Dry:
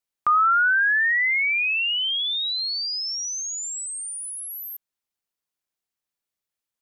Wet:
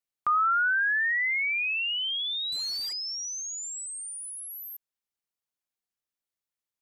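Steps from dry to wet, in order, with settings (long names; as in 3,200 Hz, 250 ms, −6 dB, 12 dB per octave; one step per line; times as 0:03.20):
0:02.52–0:02.93: variable-slope delta modulation 64 kbit/s
level −5.5 dB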